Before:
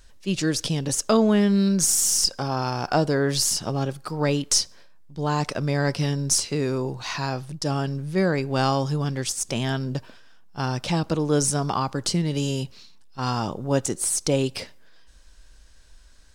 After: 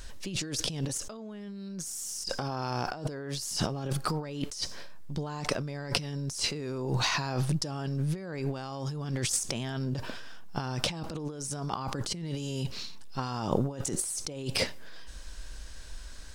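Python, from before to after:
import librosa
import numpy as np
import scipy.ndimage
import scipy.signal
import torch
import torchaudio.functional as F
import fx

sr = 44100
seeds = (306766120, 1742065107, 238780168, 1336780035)

y = fx.over_compress(x, sr, threshold_db=-34.0, ratio=-1.0)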